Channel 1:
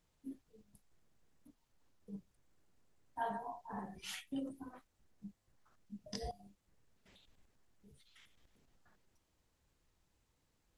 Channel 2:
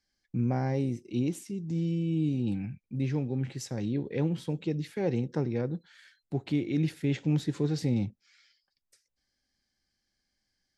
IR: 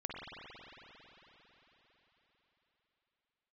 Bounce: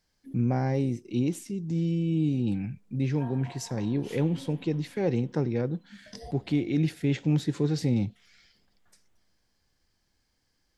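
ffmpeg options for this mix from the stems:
-filter_complex "[0:a]volume=0.794,asplit=2[s0][s1];[s1]volume=0.422[s2];[1:a]acontrast=66,volume=0.631,asplit=2[s3][s4];[s4]apad=whole_len=474972[s5];[s0][s5]sidechaincompress=threshold=0.0224:ratio=8:attack=16:release=249[s6];[2:a]atrim=start_sample=2205[s7];[s2][s7]afir=irnorm=-1:irlink=0[s8];[s6][s3][s8]amix=inputs=3:normalize=0"

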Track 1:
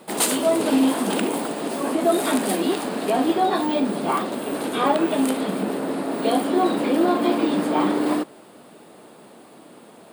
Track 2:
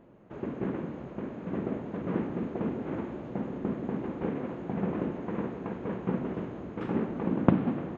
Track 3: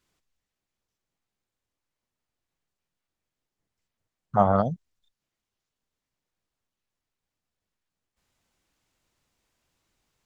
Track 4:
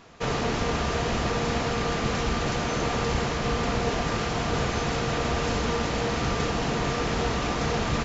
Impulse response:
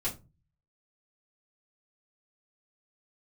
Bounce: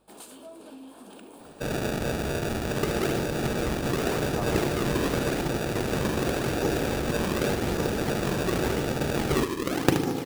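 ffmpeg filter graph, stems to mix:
-filter_complex "[0:a]acompressor=threshold=0.0631:ratio=3,bandreject=f=2000:w=5.4,aeval=exprs='val(0)+0.00355*(sin(2*PI*50*n/s)+sin(2*PI*2*50*n/s)/2+sin(2*PI*3*50*n/s)/3+sin(2*PI*4*50*n/s)/4+sin(2*PI*5*50*n/s)/5)':c=same,volume=0.106[s0];[1:a]aecho=1:1:2.4:0.77,acrusher=samples=36:mix=1:aa=0.000001:lfo=1:lforange=57.6:lforate=0.88,adelay=2400,volume=1.19,asplit=2[s1][s2];[s2]volume=0.398[s3];[2:a]volume=0.178[s4];[3:a]acrusher=samples=42:mix=1:aa=0.000001,adelay=1400,volume=0.891[s5];[s3]aecho=0:1:75|150|225|300|375|450|525|600:1|0.55|0.303|0.166|0.0915|0.0503|0.0277|0.0152[s6];[s0][s1][s4][s5][s6]amix=inputs=5:normalize=0,lowshelf=f=80:g=-6.5"

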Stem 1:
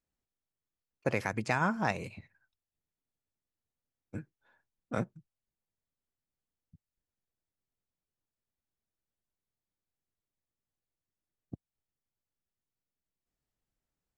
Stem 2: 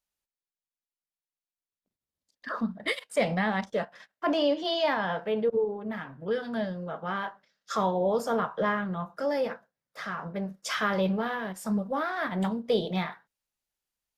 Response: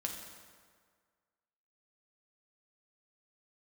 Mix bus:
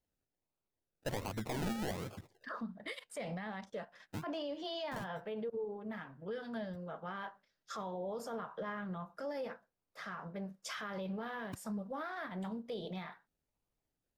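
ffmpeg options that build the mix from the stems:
-filter_complex "[0:a]acrusher=samples=33:mix=1:aa=0.000001:lfo=1:lforange=19.8:lforate=1.3,asoftclip=type=tanh:threshold=0.0237,volume=1[s0];[1:a]volume=0.376[s1];[s0][s1]amix=inputs=2:normalize=0,alimiter=level_in=2.82:limit=0.0631:level=0:latency=1:release=85,volume=0.355"

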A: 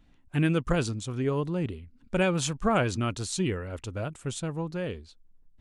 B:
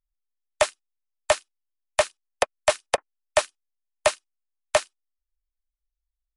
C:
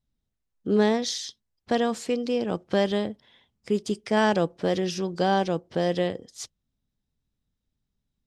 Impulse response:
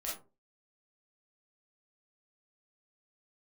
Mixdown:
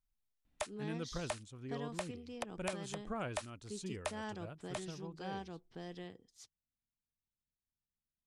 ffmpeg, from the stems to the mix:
-filter_complex "[0:a]adelay=450,volume=0.158[s0];[1:a]acrossover=split=860|3100[s1][s2][s3];[s1]acompressor=threshold=0.0355:ratio=4[s4];[s2]acompressor=threshold=0.0178:ratio=4[s5];[s3]acompressor=threshold=0.0141:ratio=4[s6];[s4][s5][s6]amix=inputs=3:normalize=0,volume=0.794[s7];[2:a]equalizer=f=560:t=o:w=0.29:g=-13,volume=0.106,asplit=2[s8][s9];[s9]apad=whole_len=280817[s10];[s7][s10]sidechaincompress=threshold=0.00178:ratio=12:attack=12:release=288[s11];[s0][s11][s8]amix=inputs=3:normalize=0,alimiter=level_in=1.26:limit=0.0631:level=0:latency=1:release=426,volume=0.794"

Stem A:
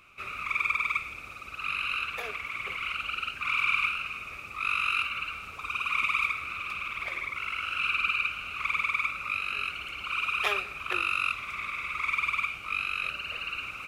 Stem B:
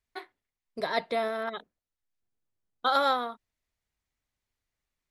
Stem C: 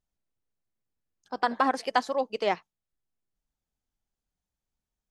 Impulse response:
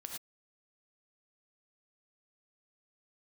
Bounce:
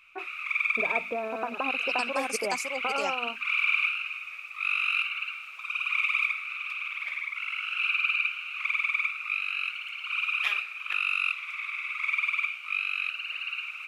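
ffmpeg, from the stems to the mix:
-filter_complex "[0:a]highpass=1100,equalizer=f=2500:t=o:w=1.2:g=8.5,volume=0.473[s0];[1:a]bandreject=f=50:t=h:w=6,bandreject=f=100:t=h:w=6,bandreject=f=150:t=h:w=6,bandreject=f=200:t=h:w=6,bandreject=f=250:t=h:w=6,volume=1.26[s1];[2:a]aexciter=amount=7.2:drive=8.7:freq=5200,volume=1.19,asplit=2[s2][s3];[s3]volume=0.299[s4];[s1][s2]amix=inputs=2:normalize=0,lowpass=f=1400:w=0.5412,lowpass=f=1400:w=1.3066,acompressor=threshold=0.0355:ratio=6,volume=1[s5];[s4]aecho=0:1:558:1[s6];[s0][s5][s6]amix=inputs=3:normalize=0"

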